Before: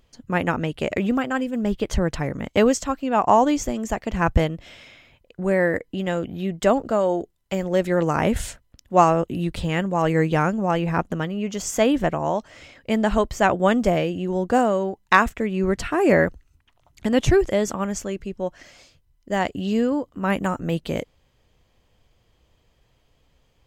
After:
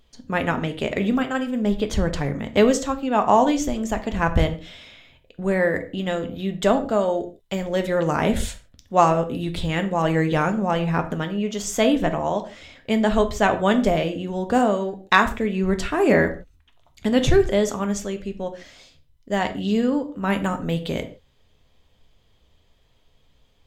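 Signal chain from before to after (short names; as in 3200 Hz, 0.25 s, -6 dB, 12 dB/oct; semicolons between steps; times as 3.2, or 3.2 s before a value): bell 3600 Hz +7.5 dB 0.34 oct; on a send: reverb, pre-delay 4 ms, DRR 6.5 dB; on the sum: gain -1 dB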